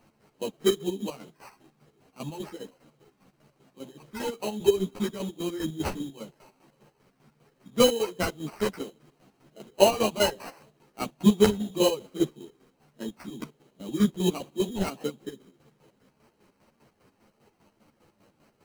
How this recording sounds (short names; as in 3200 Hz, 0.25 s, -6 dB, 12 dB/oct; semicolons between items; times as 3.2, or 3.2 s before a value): aliases and images of a low sample rate 3500 Hz, jitter 0%; chopped level 5 Hz, depth 65%, duty 45%; a shimmering, thickened sound